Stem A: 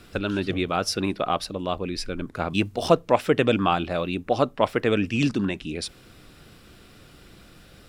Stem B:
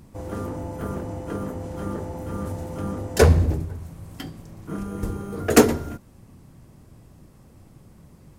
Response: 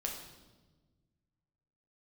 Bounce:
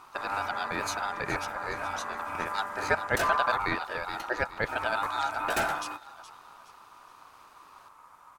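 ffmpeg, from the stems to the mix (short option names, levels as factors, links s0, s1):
-filter_complex "[0:a]volume=0.501,asplit=2[s0][s1];[s1]volume=0.224[s2];[1:a]equalizer=f=1400:t=o:w=0.3:g=5.5,asoftclip=type=tanh:threshold=0.112,volume=0.75[s3];[s2]aecho=0:1:419|838|1257|1676|2095:1|0.38|0.144|0.0549|0.0209[s4];[s0][s3][s4]amix=inputs=3:normalize=0,aeval=exprs='val(0)*sin(2*PI*1100*n/s)':c=same"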